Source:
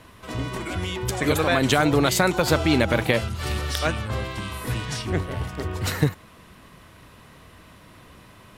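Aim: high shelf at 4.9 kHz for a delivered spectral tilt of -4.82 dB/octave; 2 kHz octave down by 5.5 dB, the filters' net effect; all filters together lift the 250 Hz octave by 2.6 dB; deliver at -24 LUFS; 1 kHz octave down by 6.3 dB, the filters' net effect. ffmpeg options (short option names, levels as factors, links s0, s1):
-af "equalizer=f=250:t=o:g=4,equalizer=f=1000:t=o:g=-8.5,equalizer=f=2000:t=o:g=-5,highshelf=f=4900:g=5.5,volume=0.944"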